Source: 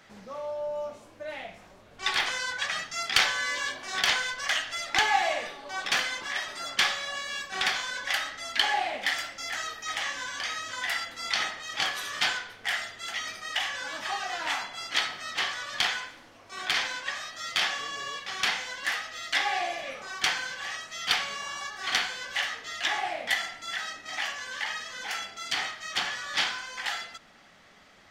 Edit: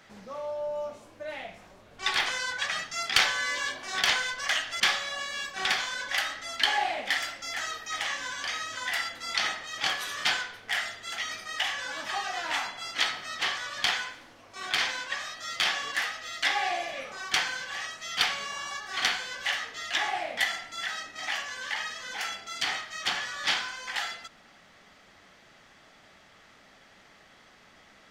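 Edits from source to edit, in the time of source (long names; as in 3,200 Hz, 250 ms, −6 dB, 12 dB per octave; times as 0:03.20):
0:04.80–0:06.76: remove
0:17.88–0:18.82: remove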